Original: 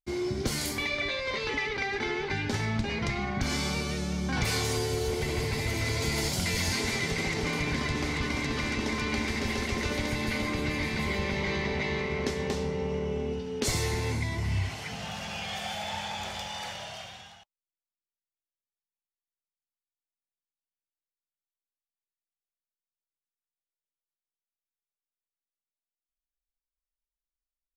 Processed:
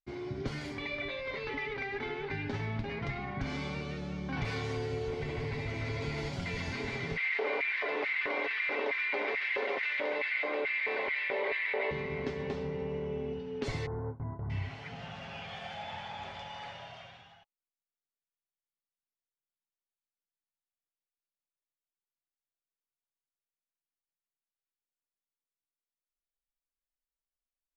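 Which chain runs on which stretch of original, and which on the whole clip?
7.17–11.91 three-band isolator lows -19 dB, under 250 Hz, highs -22 dB, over 4400 Hz + LFO high-pass square 2.3 Hz 510–2000 Hz + fast leveller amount 70%
13.86–14.5 steep low-pass 1400 Hz 48 dB/oct + notches 60/120/180/240/300/360 Hz + gate with hold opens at -23 dBFS, closes at -30 dBFS
whole clip: LPF 2800 Hz 12 dB/oct; comb 7.2 ms, depth 42%; gain -6 dB

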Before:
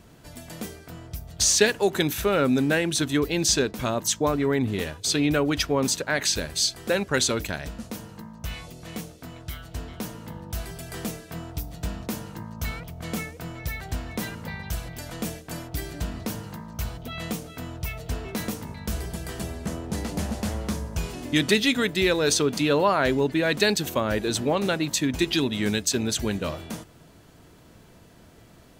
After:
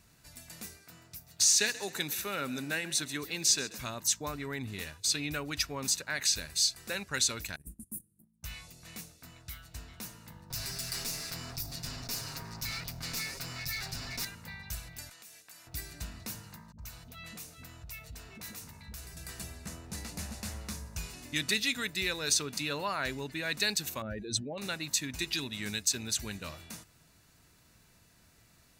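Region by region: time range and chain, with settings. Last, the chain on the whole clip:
0.77–3.78 HPF 140 Hz + frequency-shifting echo 0.133 s, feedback 44%, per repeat +46 Hz, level -17.5 dB
7.56–8.43 EQ curve 110 Hz 0 dB, 180 Hz +3 dB, 370 Hz +3 dB, 640 Hz -26 dB, 2500 Hz -25 dB, 4100 Hz -29 dB, 5900 Hz -20 dB, 9800 Hz +12 dB, 14000 Hz +4 dB + gate -36 dBFS, range -18 dB
10.5–14.25 minimum comb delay 7.4 ms + bell 4900 Hz +9.5 dB 0.57 oct + fast leveller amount 70%
15.09–15.67 HPF 890 Hz 6 dB/oct + compressor 16:1, threshold -42 dBFS
16.72–19.17 dispersion highs, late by 65 ms, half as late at 320 Hz + compressor 2:1, threshold -35 dBFS
24.02–24.58 spectral contrast raised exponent 1.8 + bell 1100 Hz -14 dB 0.38 oct + fast leveller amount 50%
whole clip: passive tone stack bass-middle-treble 5-5-5; notch 3200 Hz, Q 6.7; gain +3 dB

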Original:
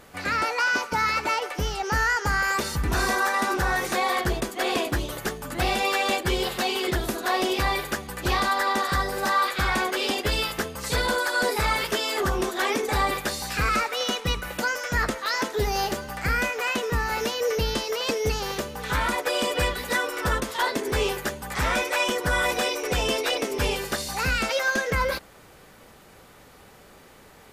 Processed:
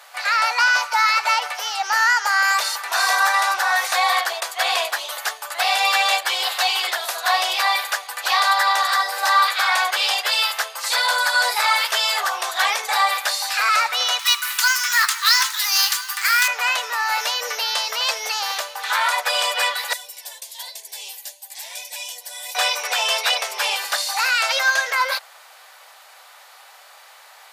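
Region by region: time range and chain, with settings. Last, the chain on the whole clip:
14.19–16.48 steep high-pass 1000 Hz 48 dB/oct + high shelf 3900 Hz +10 dB + companded quantiser 4-bit
19.93–22.55 pre-emphasis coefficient 0.8 + flange 1.1 Hz, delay 1.6 ms, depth 6.8 ms, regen +51% + fixed phaser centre 540 Hz, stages 4
whole clip: steep high-pass 660 Hz 36 dB/oct; bell 4200 Hz +4 dB 0.63 oct; gain +6.5 dB

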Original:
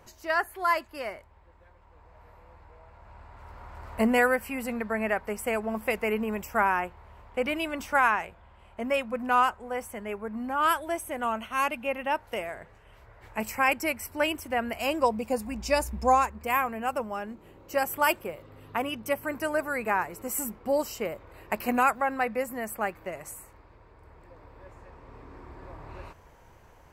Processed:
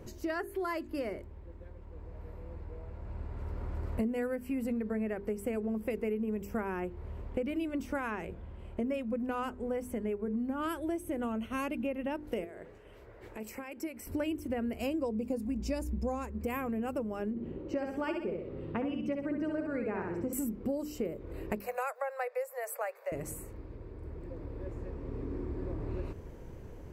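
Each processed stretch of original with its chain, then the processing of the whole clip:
12.44–14.07 tone controls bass -13 dB, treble -1 dB + compressor 4:1, threshold -43 dBFS
17.3–20.33 air absorption 160 m + feedback echo 64 ms, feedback 37%, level -4.5 dB
21.6–23.12 steep high-pass 510 Hz 72 dB/oct + bell 3100 Hz -10.5 dB 0.29 oct
whole clip: resonant low shelf 560 Hz +13 dB, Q 1.5; notches 50/100/150/200/250/300/350/400/450 Hz; compressor 6:1, threshold -30 dBFS; gain -2 dB

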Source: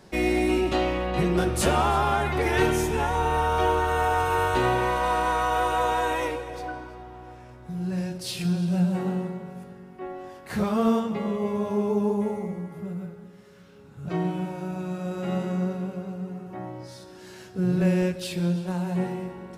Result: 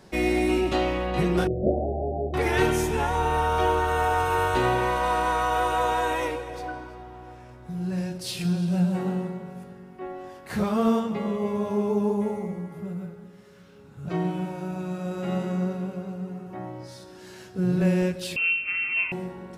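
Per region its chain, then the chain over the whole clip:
1.47–2.34 steep low-pass 710 Hz 96 dB/oct + low shelf 66 Hz -8.5 dB + doubler 24 ms -4 dB
18.36–19.12 HPF 50 Hz + inverted band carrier 2900 Hz
whole clip: dry

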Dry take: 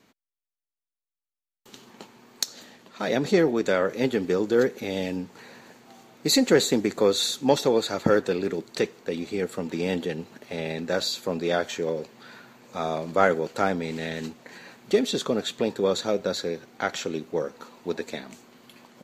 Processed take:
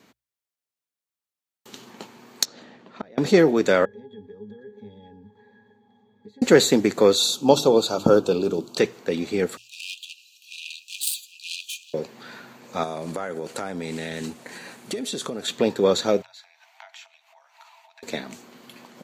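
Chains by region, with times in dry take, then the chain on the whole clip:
2.45–3.18 tape spacing loss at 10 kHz 23 dB + flipped gate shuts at -24 dBFS, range -26 dB
3.85–6.42 compressor, threshold -32 dBFS + octave resonator G#, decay 0.17 s
7.15–8.78 Butterworth band-stop 1900 Hz, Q 1.4 + notches 50/100/150/200/250/300/350 Hz
9.57–11.94 self-modulated delay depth 0.24 ms + brick-wall FIR high-pass 2400 Hz + dynamic EQ 5400 Hz, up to -6 dB, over -57 dBFS, Q 7.1
12.83–15.48 bell 9400 Hz +13 dB 0.52 oct + compressor 12:1, threshold -30 dBFS
16.22–18.03 compressor, threshold -41 dBFS + rippled Chebyshev high-pass 640 Hz, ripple 9 dB
whole clip: HPF 58 Hz; notches 60/120 Hz; gain +4.5 dB

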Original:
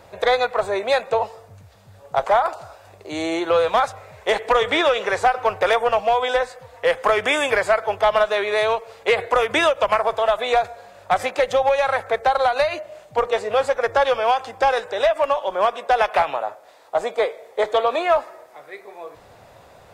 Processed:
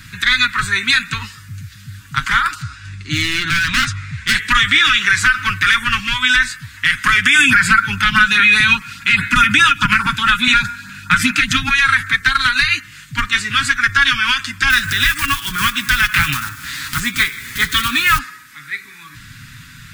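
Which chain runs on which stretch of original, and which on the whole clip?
2.62–4.35 Bessel low-pass 6500 Hz, order 6 + low shelf 210 Hz +8 dB + hard clip -21 dBFS
7.35–11.71 small resonant body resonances 210/910/1400/2500 Hz, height 11 dB, ringing for 25 ms + LFO notch saw up 4.8 Hz 240–3500 Hz
14.7–18.2 block floating point 5-bit + bell 75 Hz +13 dB 2.2 oct + upward compressor, threshold -21 dBFS
whole clip: elliptic band-stop 230–1500 Hz, stop band 70 dB; comb 7.2 ms, depth 47%; maximiser +16.5 dB; gain -1 dB

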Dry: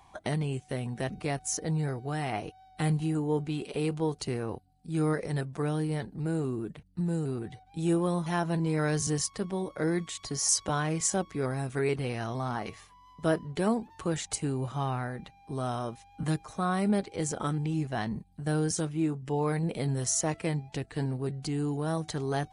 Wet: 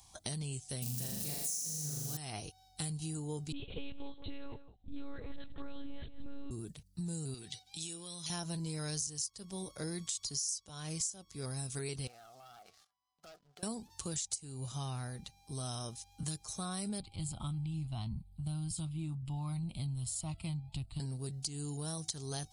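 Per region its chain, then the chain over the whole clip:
0.82–2.17 switching spikes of -30.5 dBFS + bell 190 Hz +11.5 dB 0.59 oct + flutter echo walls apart 6.9 m, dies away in 1.4 s
3.52–6.51 dispersion highs, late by 45 ms, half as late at 1900 Hz + echo 0.169 s -14.5 dB + monotone LPC vocoder at 8 kHz 280 Hz
7.34–8.3 weighting filter D + compressor 8:1, threshold -37 dBFS
12.07–13.63 double band-pass 980 Hz, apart 0.81 oct + sample leveller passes 2 + compressor 5:1, threshold -44 dBFS
17–21 LPF 3700 Hz 6 dB/oct + low shelf 130 Hz +12 dB + fixed phaser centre 1700 Hz, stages 6
whole clip: EQ curve 100 Hz 0 dB, 310 Hz -9 dB, 2000 Hz -9 dB, 5100 Hz +13 dB; compressor 12:1, threshold -33 dBFS; gain -2 dB

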